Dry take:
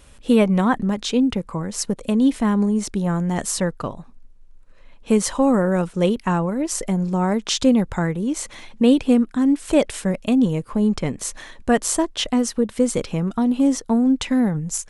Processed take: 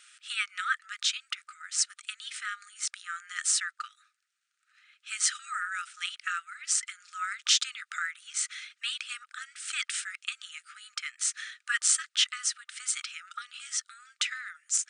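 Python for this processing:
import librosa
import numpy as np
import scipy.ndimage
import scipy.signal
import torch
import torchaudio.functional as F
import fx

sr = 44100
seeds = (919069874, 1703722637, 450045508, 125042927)

y = fx.brickwall_bandpass(x, sr, low_hz=1200.0, high_hz=9700.0)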